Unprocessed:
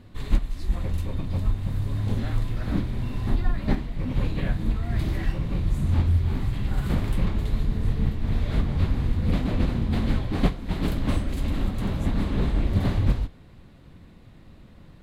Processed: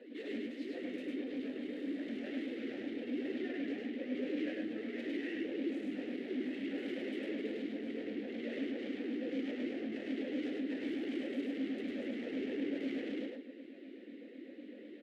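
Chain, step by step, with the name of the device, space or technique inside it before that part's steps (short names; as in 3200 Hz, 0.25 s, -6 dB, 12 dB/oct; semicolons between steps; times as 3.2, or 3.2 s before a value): steep high-pass 220 Hz 72 dB/oct; low shelf 270 Hz +9.5 dB; talk box (tube stage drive 41 dB, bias 0.45; vowel sweep e-i 4 Hz); loudspeakers at several distances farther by 35 m -2 dB, 51 m -12 dB; gain +11 dB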